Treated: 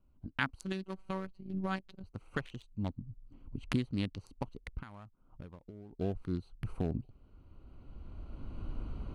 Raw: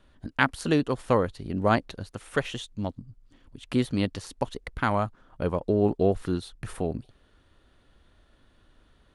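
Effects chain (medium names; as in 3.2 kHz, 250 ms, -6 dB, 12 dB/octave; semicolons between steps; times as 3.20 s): local Wiener filter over 25 samples; recorder AGC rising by 13 dB/s; 0.62–2.04 s: robot voice 190 Hz; 4.80–5.93 s: compression 6:1, threshold -36 dBFS, peak gain reduction 18.5 dB; peaking EQ 550 Hz -9 dB 1.7 oct; trim -8 dB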